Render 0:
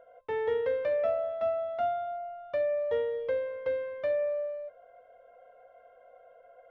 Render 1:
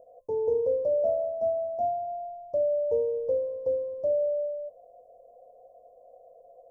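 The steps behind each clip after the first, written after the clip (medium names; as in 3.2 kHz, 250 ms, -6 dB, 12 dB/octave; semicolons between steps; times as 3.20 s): inverse Chebyshev band-stop 1.5–3.1 kHz, stop band 60 dB; trim +3.5 dB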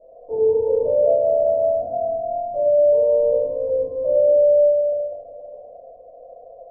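peak limiter -25 dBFS, peak gain reduction 8 dB; distance through air 240 m; reverberation RT60 2.3 s, pre-delay 3 ms, DRR -18.5 dB; trim -7.5 dB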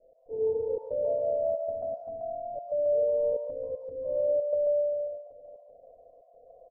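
trance gate "x.xxxx.xxxxx.x" 116 bpm -24 dB; bands offset in time lows, highs 140 ms, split 660 Hz; trim -8.5 dB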